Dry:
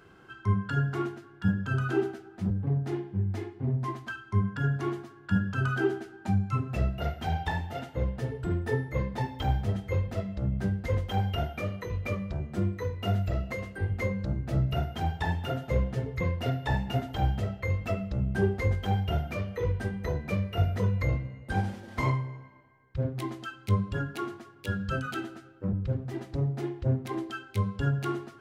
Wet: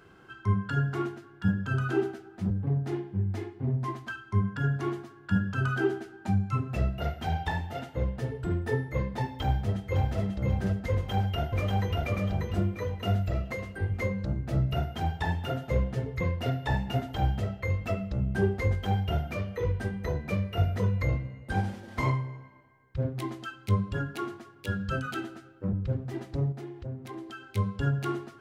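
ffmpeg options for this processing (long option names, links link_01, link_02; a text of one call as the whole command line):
ffmpeg -i in.wav -filter_complex "[0:a]asplit=2[link_01][link_02];[link_02]afade=type=in:start_time=9.41:duration=0.01,afade=type=out:start_time=10.18:duration=0.01,aecho=0:1:540|1080|1620|2160|2700:0.668344|0.267338|0.106935|0.042774|0.0171096[link_03];[link_01][link_03]amix=inputs=2:normalize=0,asplit=2[link_04][link_05];[link_05]afade=type=in:start_time=10.93:duration=0.01,afade=type=out:start_time=12.01:duration=0.01,aecho=0:1:590|1180|1770|2360|2950:0.841395|0.294488|0.103071|0.0360748|0.0126262[link_06];[link_04][link_06]amix=inputs=2:normalize=0,asettb=1/sr,asplit=3[link_07][link_08][link_09];[link_07]atrim=end=26.524[link_10];[link_08]atrim=start=26.52:end=27.49,asetpts=PTS-STARTPTS,afade=type=in:duration=0.004:curve=qsin,afade=type=out:start_time=0.966:duration=0.004:curve=qsin,acompressor=threshold=-42dB:ratio=2:attack=3.2:release=140:knee=1:detection=peak[link_11];[link_09]atrim=start=27.486[link_12];[link_10][link_11]acrossfade=duration=0.004:curve1=hsin:curve2=qsin[link_13];[link_13][link_12]acrossfade=duration=0.004:curve1=qsin:curve2=hsin" out.wav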